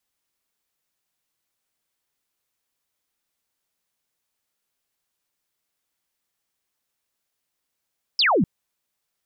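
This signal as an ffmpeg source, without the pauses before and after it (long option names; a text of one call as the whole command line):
ffmpeg -f lavfi -i "aevalsrc='0.168*clip(t/0.002,0,1)*clip((0.25-t)/0.002,0,1)*sin(2*PI*5400*0.25/log(150/5400)*(exp(log(150/5400)*t/0.25)-1))':duration=0.25:sample_rate=44100" out.wav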